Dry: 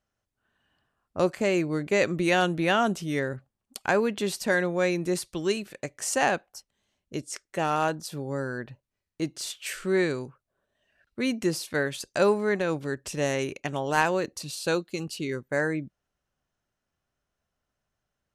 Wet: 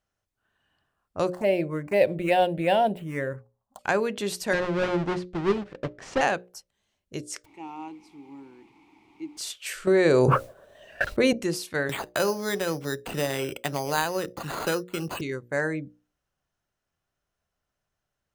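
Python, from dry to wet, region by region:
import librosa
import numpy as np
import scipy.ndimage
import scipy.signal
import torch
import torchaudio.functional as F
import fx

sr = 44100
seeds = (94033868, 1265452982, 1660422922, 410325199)

y = fx.chain(x, sr, fx.median_filter(points=9),
    fx.band_shelf(hz=750.0, db=10.0, octaves=1.3),
    fx.env_phaser(low_hz=370.0, high_hz=1200.0, full_db=-17.0), at=(1.32, 3.79))
y = fx.chain(y, sr, fx.halfwave_hold(),
    fx.spacing_loss(db_at_10k=30), at=(4.53, 6.21))
y = fx.bass_treble(y, sr, bass_db=-4, treble_db=8, at=(7.44, 9.37), fade=0.02)
y = fx.dmg_noise_colour(y, sr, seeds[0], colour='pink', level_db=-42.0, at=(7.44, 9.37), fade=0.02)
y = fx.vowel_filter(y, sr, vowel='u', at=(7.44, 9.37), fade=0.02)
y = fx.chain(y, sr, fx.gate_hold(open_db=-58.0, close_db=-62.0, hold_ms=71.0, range_db=-21, attack_ms=1.4, release_ms=100.0),
    fx.peak_eq(hz=570.0, db=9.0, octaves=0.92),
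    fx.env_flatten(amount_pct=100), at=(9.87, 11.33))
y = fx.chain(y, sr, fx.cheby1_lowpass(hz=6200.0, order=6),
    fx.resample_bad(factor=8, down='none', up='hold'),
    fx.band_squash(depth_pct=70), at=(11.89, 15.21))
y = fx.peak_eq(y, sr, hz=240.0, db=-4.0, octaves=0.37)
y = fx.hum_notches(y, sr, base_hz=60, count=10)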